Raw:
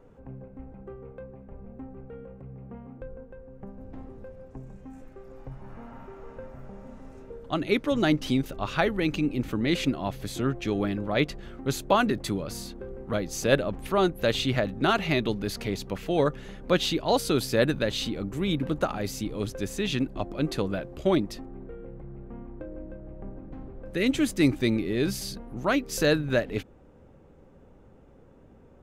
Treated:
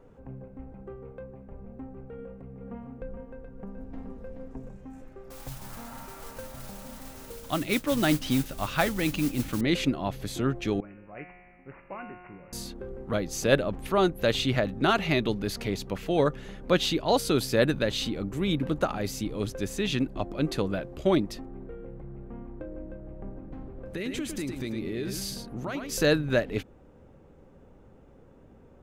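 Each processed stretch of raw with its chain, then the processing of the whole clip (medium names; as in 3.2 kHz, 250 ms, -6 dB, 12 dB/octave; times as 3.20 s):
2.18–4.69 s: comb 4.3 ms, depth 43% + delay 426 ms -6.5 dB
5.30–9.61 s: modulation noise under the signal 15 dB + peaking EQ 410 Hz -8 dB 0.36 oct + tape noise reduction on one side only encoder only
10.80–12.53 s: feedback comb 180 Hz, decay 1.7 s, mix 90% + careless resampling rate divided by 8×, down none, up filtered
23.67–25.93 s: compression 12:1, threshold -29 dBFS + delay 108 ms -6 dB
whole clip: none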